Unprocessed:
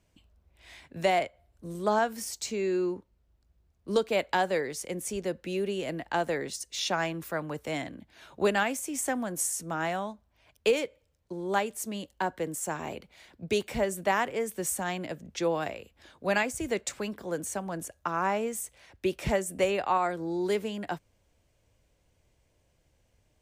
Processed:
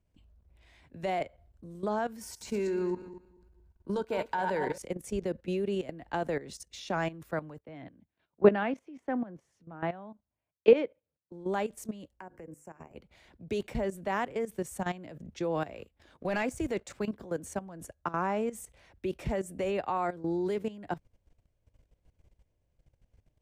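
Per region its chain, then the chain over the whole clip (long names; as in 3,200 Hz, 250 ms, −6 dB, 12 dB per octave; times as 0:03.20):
0:02.21–0:04.78: feedback delay that plays each chunk backwards 116 ms, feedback 45%, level −9 dB + high-shelf EQ 11,000 Hz +5.5 dB + hollow resonant body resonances 940/1,500 Hz, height 14 dB, ringing for 35 ms
0:07.58–0:11.32: high-pass filter 120 Hz + high-frequency loss of the air 300 metres + multiband upward and downward expander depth 100%
0:12.13–0:12.96: mains-hum notches 50/100/150/200/250/300/350/400/450/500 Hz + downward compressor 4 to 1, threshold −44 dBFS + Butterworth band-reject 3,700 Hz, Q 1.6
0:15.74–0:16.97: low-shelf EQ 210 Hz −3.5 dB + leveller curve on the samples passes 1
whole clip: spectral tilt −2 dB per octave; output level in coarse steps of 15 dB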